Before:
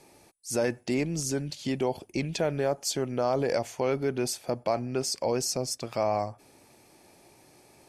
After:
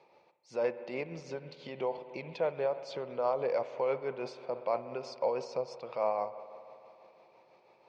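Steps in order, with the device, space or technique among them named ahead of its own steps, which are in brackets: bass shelf 460 Hz -9.5 dB; combo amplifier with spring reverb and tremolo (spring tank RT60 3 s, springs 60 ms, chirp 75 ms, DRR 11.5 dB; tremolo 6.1 Hz, depth 38%; cabinet simulation 100–3600 Hz, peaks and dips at 100 Hz -10 dB, 280 Hz -8 dB, 510 Hz +9 dB, 1 kHz +7 dB, 1.7 kHz -7 dB, 3.2 kHz -5 dB); trim -2.5 dB

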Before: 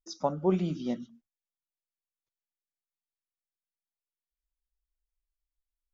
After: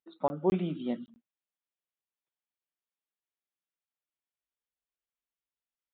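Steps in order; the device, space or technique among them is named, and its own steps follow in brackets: call with lost packets (high-pass 170 Hz 12 dB/octave; resampled via 8 kHz; lost packets of 20 ms)

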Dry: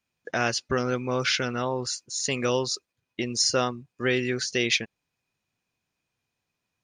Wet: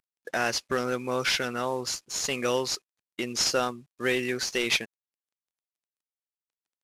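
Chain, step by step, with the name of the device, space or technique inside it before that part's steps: early wireless headset (high-pass 260 Hz 6 dB/octave; CVSD coder 64 kbps)

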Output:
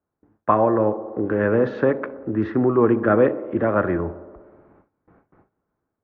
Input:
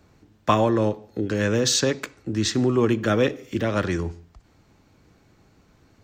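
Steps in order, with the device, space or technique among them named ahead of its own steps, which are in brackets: bass shelf 210 Hz -11 dB; feedback echo behind a band-pass 63 ms, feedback 77%, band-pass 470 Hz, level -14 dB; gate with hold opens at -50 dBFS; action camera in a waterproof case (low-pass 1.5 kHz 24 dB/octave; level rider gain up to 7 dB; AAC 48 kbps 16 kHz)

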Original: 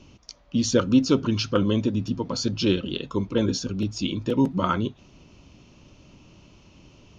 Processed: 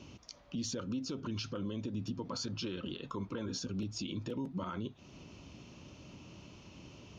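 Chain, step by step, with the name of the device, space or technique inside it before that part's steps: 2.30–3.60 s: dynamic bell 1.2 kHz, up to +8 dB, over -44 dBFS, Q 1.1; podcast mastering chain (high-pass 68 Hz; de-esser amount 50%; compression 2.5:1, threshold -36 dBFS, peak gain reduction 15 dB; peak limiter -29 dBFS, peak gain reduction 10 dB; MP3 96 kbps 48 kHz)

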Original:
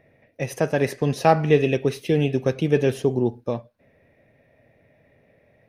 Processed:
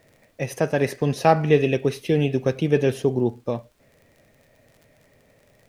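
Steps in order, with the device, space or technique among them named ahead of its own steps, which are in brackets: vinyl LP (crackle 36 per s -43 dBFS; pink noise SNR 42 dB)

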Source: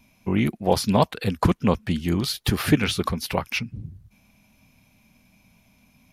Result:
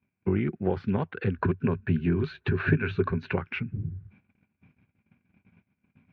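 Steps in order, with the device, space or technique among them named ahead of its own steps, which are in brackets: bass amplifier (compression 5:1, threshold -26 dBFS, peak gain reduction 13 dB; cabinet simulation 68–2400 Hz, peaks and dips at 93 Hz +7 dB, 160 Hz +5 dB, 380 Hz +9 dB, 630 Hz -7 dB, 980 Hz -4 dB, 1.5 kHz +8 dB); gate -55 dBFS, range -24 dB; 1.36–3.33 s: rippled EQ curve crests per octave 1.5, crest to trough 9 dB

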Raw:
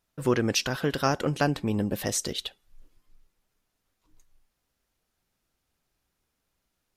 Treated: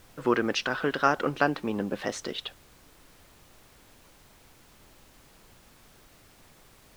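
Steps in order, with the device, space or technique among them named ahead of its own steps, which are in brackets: horn gramophone (band-pass 230–3600 Hz; peaking EQ 1.3 kHz +6 dB; wow and flutter; pink noise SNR 23 dB)

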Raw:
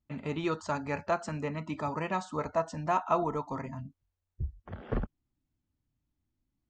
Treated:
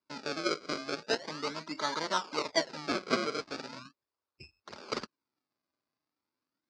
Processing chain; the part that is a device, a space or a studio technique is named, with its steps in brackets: circuit-bent sampling toy (decimation with a swept rate 33×, swing 100% 0.39 Hz; cabinet simulation 460–5700 Hz, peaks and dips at 500 Hz -4 dB, 730 Hz -9 dB, 1.8 kHz -5 dB, 3.1 kHz -7 dB, 4.8 kHz +8 dB); 2.76–3.32 s: dynamic bell 5.8 kHz, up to -4 dB, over -51 dBFS, Q 1.1; trim +5 dB

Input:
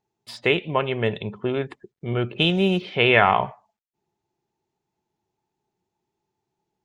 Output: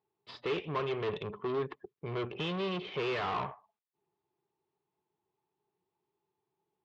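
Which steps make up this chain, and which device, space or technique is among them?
guitar amplifier (valve stage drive 31 dB, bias 0.75; tone controls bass +3 dB, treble +8 dB; cabinet simulation 93–3500 Hz, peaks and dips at 110 Hz -6 dB, 220 Hz -7 dB, 420 Hz +7 dB, 1.1 kHz +9 dB); trim -3 dB

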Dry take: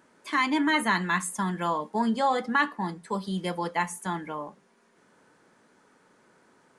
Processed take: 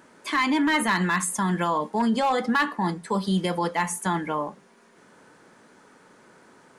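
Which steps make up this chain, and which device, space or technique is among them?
clipper into limiter (hard clipper -18 dBFS, distortion -19 dB; peak limiter -23.5 dBFS, peak gain reduction 5.5 dB); trim +7.5 dB

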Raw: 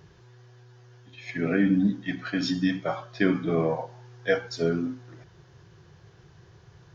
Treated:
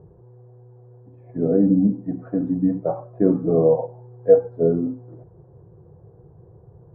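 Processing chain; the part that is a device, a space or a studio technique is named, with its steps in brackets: under water (low-pass 790 Hz 24 dB/octave; peaking EQ 480 Hz +8 dB 0.24 oct); 1.27–2.19 s: treble shelf 2.4 kHz -10.5 dB; trim +5 dB

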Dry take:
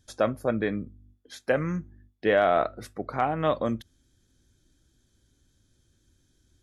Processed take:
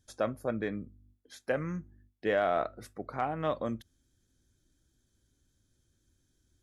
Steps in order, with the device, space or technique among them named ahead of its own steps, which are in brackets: exciter from parts (in parallel at -9.5 dB: high-pass 2 kHz 12 dB/octave + saturation -33.5 dBFS, distortion -9 dB + high-pass 3.9 kHz 12 dB/octave); on the sum: trim -6.5 dB

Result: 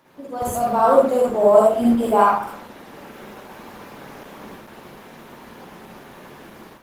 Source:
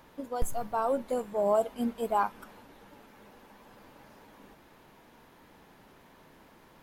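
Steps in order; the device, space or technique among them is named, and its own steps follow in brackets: far-field microphone of a smart speaker (reverberation RT60 0.50 s, pre-delay 44 ms, DRR -4 dB; high-pass 130 Hz 12 dB/octave; level rider gain up to 12 dB; Opus 16 kbps 48 kHz)

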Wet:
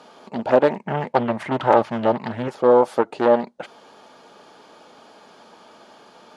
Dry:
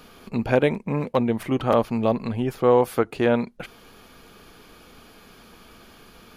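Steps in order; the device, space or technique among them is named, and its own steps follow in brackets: 0.76–2.48 s: graphic EQ 125/500/2000 Hz +9/-5/+9 dB; full-range speaker at full volume (loudspeaker Doppler distortion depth 0.57 ms; cabinet simulation 230–8700 Hz, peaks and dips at 600 Hz +9 dB, 880 Hz +10 dB, 2.4 kHz -5 dB)

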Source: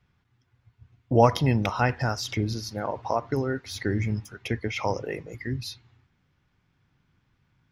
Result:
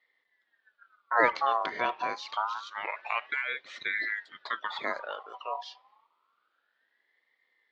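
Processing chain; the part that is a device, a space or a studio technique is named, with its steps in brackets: voice changer toy (ring modulator with a swept carrier 1.4 kHz, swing 40%, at 0.27 Hz; cabinet simulation 430–4100 Hz, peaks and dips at 740 Hz -3 dB, 1.6 kHz -5 dB, 2.7 kHz -6 dB)

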